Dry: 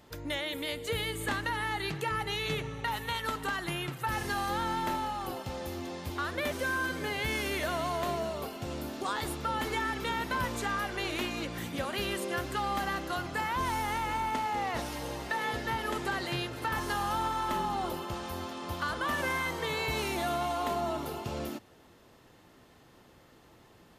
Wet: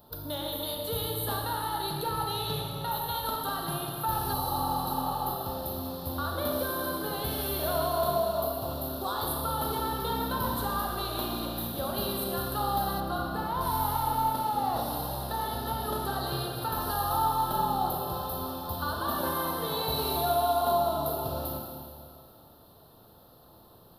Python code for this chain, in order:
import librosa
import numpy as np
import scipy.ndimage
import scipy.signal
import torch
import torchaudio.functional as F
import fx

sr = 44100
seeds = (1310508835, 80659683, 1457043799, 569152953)

y = fx.curve_eq(x, sr, hz=(190.0, 290.0, 450.0, 670.0, 1400.0, 2100.0, 4000.0, 6900.0, 12000.0), db=(0, -4, -1, 3, -2, -23, 4, -17, 13))
y = fx.rev_schroeder(y, sr, rt60_s=2.2, comb_ms=27, drr_db=0.0)
y = fx.spec_repair(y, sr, seeds[0], start_s=4.36, length_s=0.86, low_hz=420.0, high_hz=3700.0, source='after')
y = fx.high_shelf(y, sr, hz=4500.0, db=-9.0, at=(13.0, 13.61))